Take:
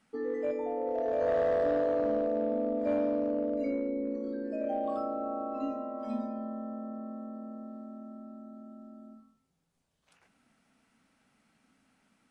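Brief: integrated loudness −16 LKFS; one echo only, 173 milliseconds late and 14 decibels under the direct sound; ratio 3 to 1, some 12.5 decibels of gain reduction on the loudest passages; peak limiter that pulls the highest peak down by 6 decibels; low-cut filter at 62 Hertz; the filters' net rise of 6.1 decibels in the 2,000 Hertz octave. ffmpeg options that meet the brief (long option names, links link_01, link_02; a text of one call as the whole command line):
ffmpeg -i in.wav -af "highpass=62,equalizer=frequency=2000:width_type=o:gain=7.5,acompressor=threshold=-42dB:ratio=3,alimiter=level_in=12.5dB:limit=-24dB:level=0:latency=1,volume=-12.5dB,aecho=1:1:173:0.2,volume=29dB" out.wav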